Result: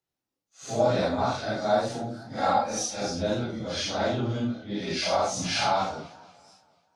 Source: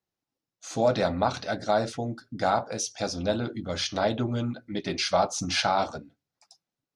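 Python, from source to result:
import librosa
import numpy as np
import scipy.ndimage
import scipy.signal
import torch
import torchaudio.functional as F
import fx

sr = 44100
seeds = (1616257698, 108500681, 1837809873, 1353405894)

y = fx.phase_scramble(x, sr, seeds[0], window_ms=200)
y = fx.comb(y, sr, ms=3.7, depth=0.65, at=(2.38, 3.0))
y = fx.echo_warbled(y, sr, ms=241, feedback_pct=45, rate_hz=2.8, cents=157, wet_db=-20)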